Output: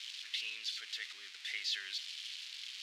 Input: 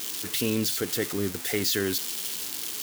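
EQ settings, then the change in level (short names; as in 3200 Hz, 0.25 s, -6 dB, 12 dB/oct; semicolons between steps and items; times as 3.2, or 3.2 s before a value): Butterworth band-pass 3000 Hz, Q 1.2; -4.5 dB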